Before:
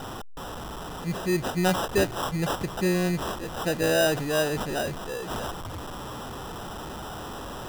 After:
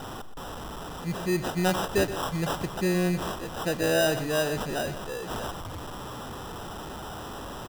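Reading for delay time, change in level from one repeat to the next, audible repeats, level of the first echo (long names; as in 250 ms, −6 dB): 123 ms, −14.5 dB, 2, −13.0 dB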